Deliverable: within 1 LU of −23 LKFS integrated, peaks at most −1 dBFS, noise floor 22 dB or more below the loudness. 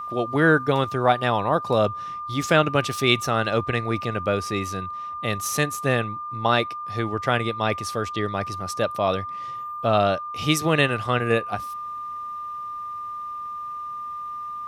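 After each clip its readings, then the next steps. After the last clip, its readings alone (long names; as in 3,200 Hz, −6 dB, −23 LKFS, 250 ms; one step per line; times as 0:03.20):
interfering tone 1,200 Hz; level of the tone −30 dBFS; integrated loudness −24.0 LKFS; sample peak −2.5 dBFS; target loudness −23.0 LKFS
→ notch filter 1,200 Hz, Q 30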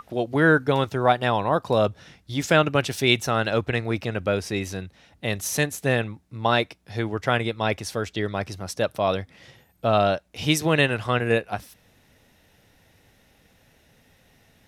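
interfering tone none found; integrated loudness −24.0 LKFS; sample peak −3.0 dBFS; target loudness −23.0 LKFS
→ level +1 dB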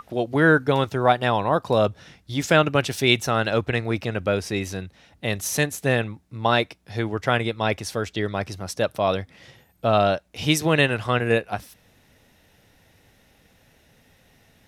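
integrated loudness −23.0 LKFS; sample peak −2.0 dBFS; background noise floor −60 dBFS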